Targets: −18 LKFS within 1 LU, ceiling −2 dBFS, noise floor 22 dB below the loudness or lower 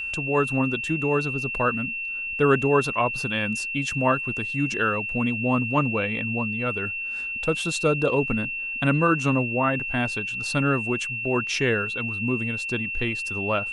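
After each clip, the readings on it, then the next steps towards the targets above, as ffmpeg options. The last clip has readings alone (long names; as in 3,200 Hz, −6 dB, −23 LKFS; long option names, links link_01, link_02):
interfering tone 2,700 Hz; level of the tone −28 dBFS; integrated loudness −24.0 LKFS; sample peak −7.5 dBFS; target loudness −18.0 LKFS
→ -af "bandreject=frequency=2700:width=30"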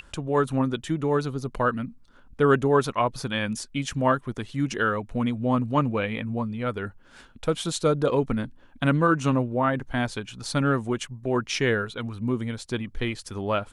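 interfering tone none found; integrated loudness −26.0 LKFS; sample peak −7.5 dBFS; target loudness −18.0 LKFS
→ -af "volume=8dB,alimiter=limit=-2dB:level=0:latency=1"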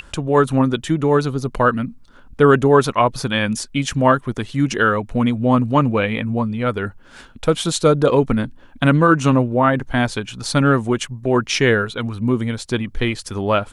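integrated loudness −18.0 LKFS; sample peak −2.0 dBFS; background noise floor −45 dBFS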